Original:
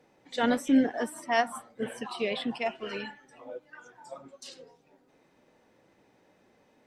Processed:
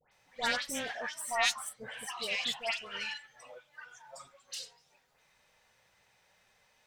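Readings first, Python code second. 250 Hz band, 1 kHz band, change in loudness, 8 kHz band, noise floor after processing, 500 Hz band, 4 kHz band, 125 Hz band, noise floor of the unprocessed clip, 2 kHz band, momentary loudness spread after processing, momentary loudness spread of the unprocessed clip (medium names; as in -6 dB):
-21.0 dB, -5.5 dB, -4.5 dB, +6.5 dB, -70 dBFS, -10.0 dB, +4.5 dB, -11.0 dB, -66 dBFS, +1.0 dB, 22 LU, 22 LU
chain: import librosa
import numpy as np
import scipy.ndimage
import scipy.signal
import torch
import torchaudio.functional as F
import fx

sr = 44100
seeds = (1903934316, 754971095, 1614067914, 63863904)

y = fx.self_delay(x, sr, depth_ms=0.17)
y = fx.tone_stack(y, sr, knobs='10-0-10')
y = fx.dispersion(y, sr, late='highs', ms=119.0, hz=1800.0)
y = F.gain(torch.from_numpy(y), 6.5).numpy()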